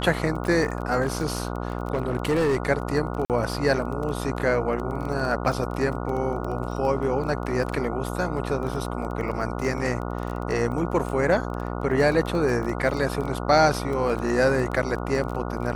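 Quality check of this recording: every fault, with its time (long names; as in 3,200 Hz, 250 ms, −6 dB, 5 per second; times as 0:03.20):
mains buzz 60 Hz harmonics 24 −30 dBFS
surface crackle 17 per second −29 dBFS
0:01.02–0:02.70: clipping −18.5 dBFS
0:03.25–0:03.30: drop-out 48 ms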